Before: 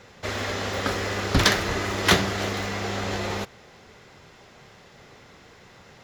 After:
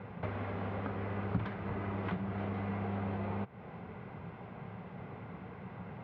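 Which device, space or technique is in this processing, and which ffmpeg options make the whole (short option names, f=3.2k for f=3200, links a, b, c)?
bass amplifier: -af "acompressor=threshold=-39dB:ratio=6,highpass=70,equalizer=f=110:t=q:w=4:g=6,equalizer=f=180:t=q:w=4:g=9,equalizer=f=350:t=q:w=4:g=-4,equalizer=f=550:t=q:w=4:g=-4,equalizer=f=1.3k:t=q:w=4:g=-4,equalizer=f=1.8k:t=q:w=4:g=-10,lowpass=f=2k:w=0.5412,lowpass=f=2k:w=1.3066,volume=4.5dB"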